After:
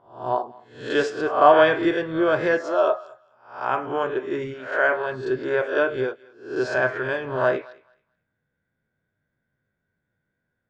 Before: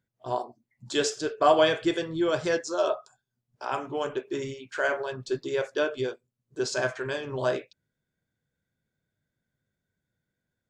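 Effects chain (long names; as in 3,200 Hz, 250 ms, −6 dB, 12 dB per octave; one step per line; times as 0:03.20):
peak hold with a rise ahead of every peak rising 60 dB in 0.48 s
drawn EQ curve 140 Hz 0 dB, 1,700 Hz +5 dB, 7,000 Hz −17 dB
feedback echo with a high-pass in the loop 216 ms, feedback 21%, high-pass 730 Hz, level −21 dB
level +1.5 dB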